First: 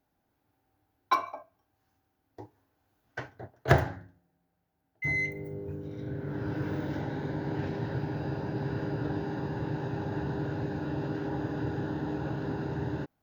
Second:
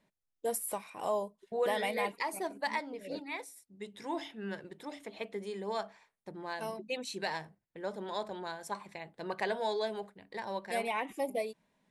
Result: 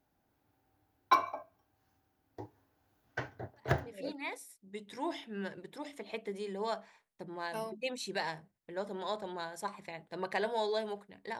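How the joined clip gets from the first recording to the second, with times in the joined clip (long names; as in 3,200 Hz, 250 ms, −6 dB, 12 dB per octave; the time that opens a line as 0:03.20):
first
0:03.77: continue with second from 0:02.84, crossfade 0.52 s quadratic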